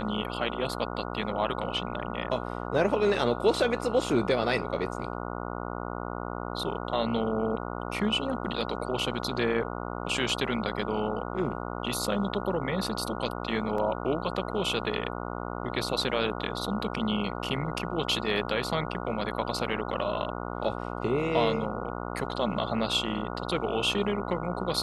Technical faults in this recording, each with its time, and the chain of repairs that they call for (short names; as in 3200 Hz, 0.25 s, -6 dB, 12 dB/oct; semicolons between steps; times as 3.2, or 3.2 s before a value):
buzz 60 Hz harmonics 24 -35 dBFS
13.78 gap 2.9 ms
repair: de-hum 60 Hz, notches 24; interpolate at 13.78, 2.9 ms